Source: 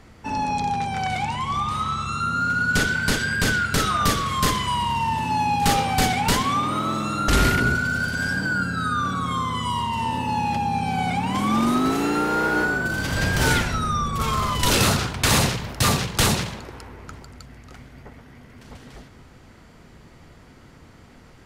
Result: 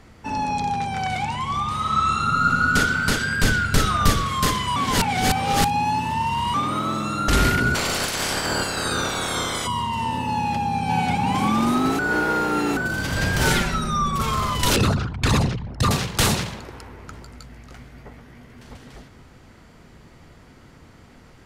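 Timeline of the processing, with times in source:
1.77–2.59 s: reverb throw, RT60 2.8 s, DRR -2 dB
3.43–4.26 s: bass shelf 90 Hz +11 dB
4.76–6.54 s: reverse
7.74–9.66 s: spectral peaks clipped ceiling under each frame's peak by 28 dB
10.35–10.95 s: echo throw 540 ms, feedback 35%, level -1.5 dB
11.99–12.77 s: reverse
13.45–14.22 s: comb 5.2 ms, depth 62%
14.76–15.91 s: resonances exaggerated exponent 2
17.12–18.74 s: doubling 17 ms -7.5 dB

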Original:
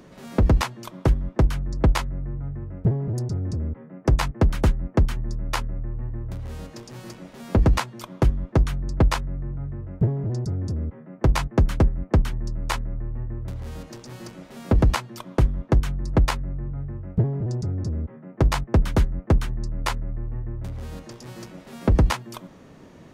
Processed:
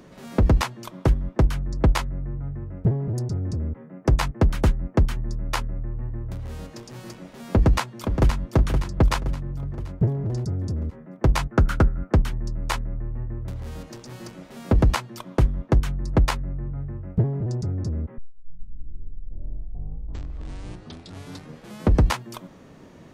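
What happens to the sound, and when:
7.51–8.49 s: echo throw 520 ms, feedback 50%, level -7 dB
11.52–12.14 s: peaking EQ 1.4 kHz +14.5 dB 0.3 oct
18.18 s: tape start 3.95 s

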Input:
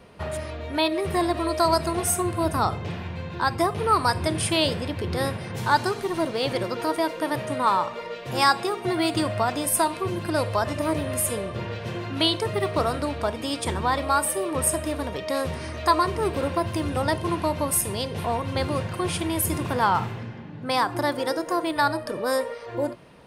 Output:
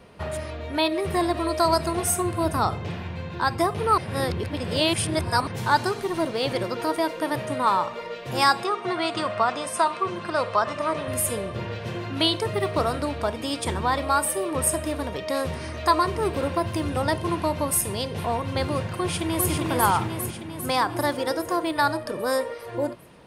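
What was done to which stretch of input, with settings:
3.98–5.47 s: reverse
8.64–11.08 s: cabinet simulation 190–7800 Hz, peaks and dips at 300 Hz -8 dB, 1.2 kHz +8 dB, 4.8 kHz -3 dB, 7.1 kHz -4 dB
18.88–19.50 s: echo throw 400 ms, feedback 65%, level -3.5 dB

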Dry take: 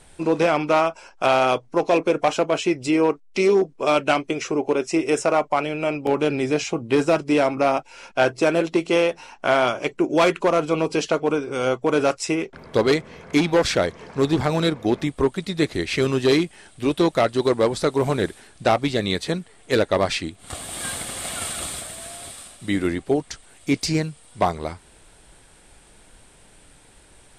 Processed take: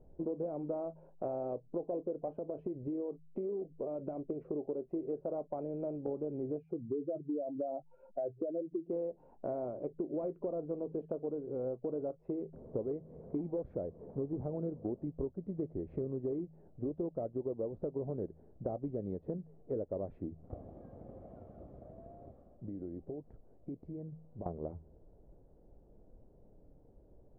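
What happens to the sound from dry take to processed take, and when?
2.37–4.23 s: compression, threshold -22 dBFS
6.58–8.90 s: spectral contrast enhancement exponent 2.2
20.58–24.46 s: compression 10:1, threshold -31 dBFS
whole clip: Chebyshev low-pass 570 Hz, order 3; de-hum 79.52 Hz, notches 2; compression 5:1, threshold -29 dBFS; trim -6 dB

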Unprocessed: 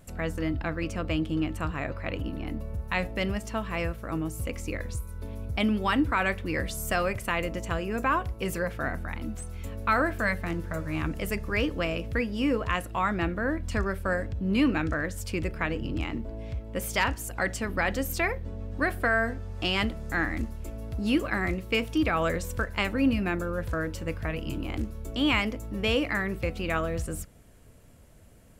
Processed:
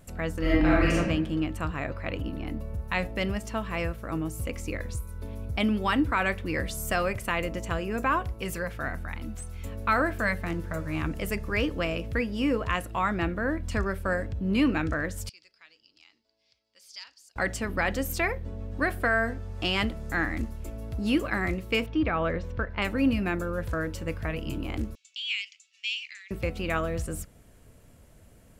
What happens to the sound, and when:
0.40–0.97 s: reverb throw, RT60 1 s, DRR -8 dB
8.41–9.63 s: peaking EQ 360 Hz -4 dB 2.8 oct
15.29–17.36 s: band-pass filter 4.8 kHz, Q 6.3
21.86–22.82 s: distance through air 280 m
24.95–26.31 s: elliptic band-pass 2.5–7.1 kHz, stop band 80 dB

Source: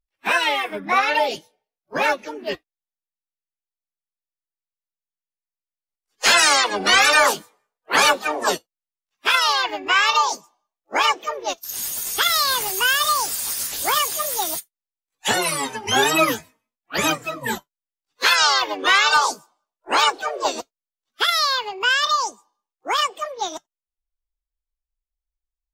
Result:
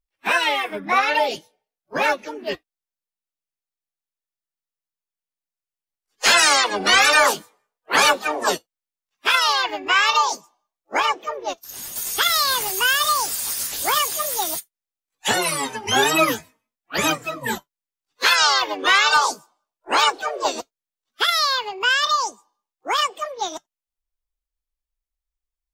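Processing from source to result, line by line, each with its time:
11.00–11.96 s: treble shelf 2.2 kHz -7 dB

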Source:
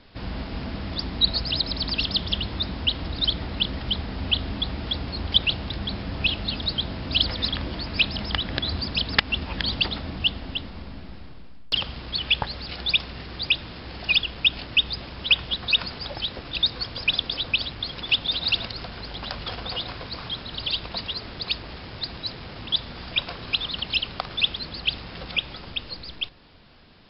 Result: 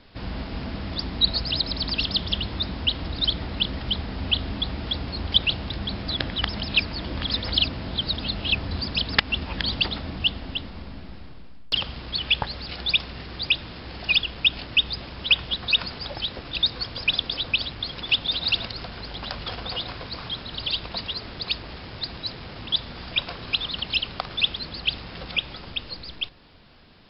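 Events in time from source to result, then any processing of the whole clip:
6.08–8.71 s: reverse

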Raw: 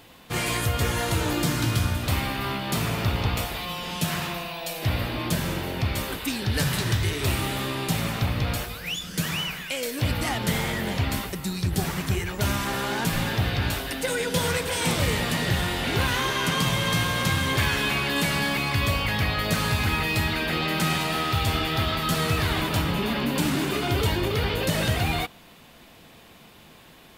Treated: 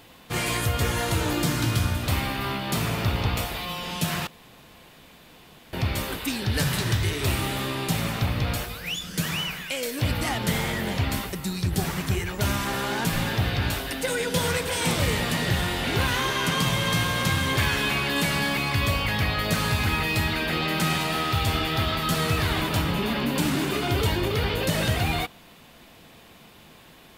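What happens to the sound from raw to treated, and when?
4.27–5.73 s: room tone

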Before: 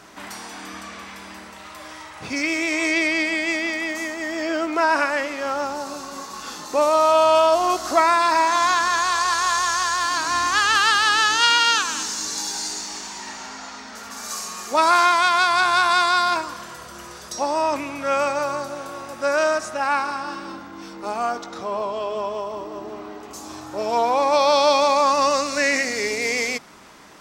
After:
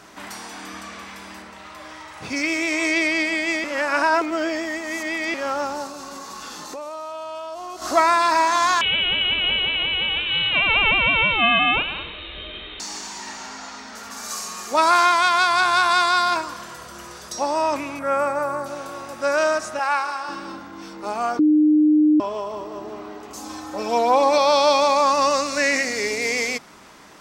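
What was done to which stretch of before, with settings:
1.42–2.08 s: treble shelf 7 kHz -9 dB
3.64–5.34 s: reverse
5.86–7.82 s: compression, threshold -31 dBFS
8.81–12.80 s: frequency inversion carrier 4 kHz
17.99–18.66 s: high-order bell 4.1 kHz -12 dB
19.79–20.29 s: high-pass 490 Hz
21.39–22.20 s: bleep 304 Hz -12 dBFS
23.37–24.38 s: comb 3.9 ms, depth 67%

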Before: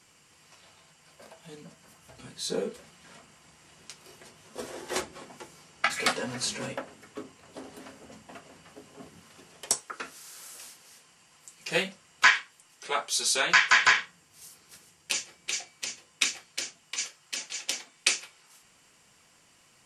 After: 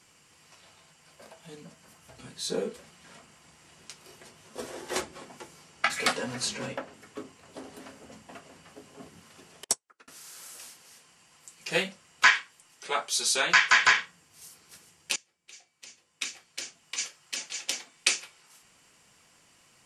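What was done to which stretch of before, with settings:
6.48–6.94 s: peaking EQ 9.9 kHz -7 dB 0.73 oct
9.64–10.08 s: upward expansion 2.5:1, over -47 dBFS
15.16–16.99 s: fade in quadratic, from -21.5 dB

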